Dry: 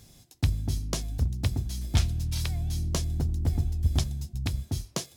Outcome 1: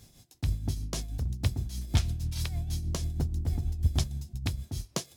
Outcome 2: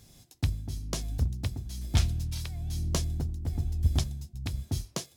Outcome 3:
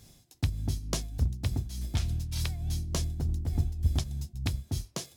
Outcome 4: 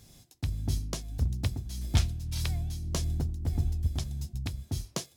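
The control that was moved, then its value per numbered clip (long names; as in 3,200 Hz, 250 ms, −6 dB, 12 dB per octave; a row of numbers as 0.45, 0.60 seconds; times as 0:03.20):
shaped tremolo, speed: 6.3, 1.1, 3.4, 1.7 Hertz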